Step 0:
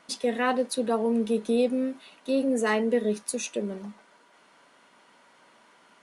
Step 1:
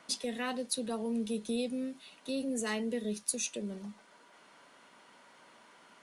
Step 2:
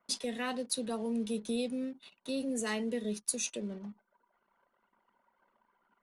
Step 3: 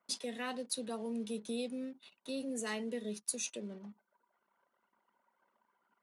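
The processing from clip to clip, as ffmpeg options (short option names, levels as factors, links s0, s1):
-filter_complex "[0:a]acrossover=split=170|3000[s0][s1][s2];[s1]acompressor=threshold=0.00126:ratio=1.5[s3];[s0][s3][s2]amix=inputs=3:normalize=0"
-af "anlmdn=0.00158"
-af "highpass=f=160:p=1,volume=0.668"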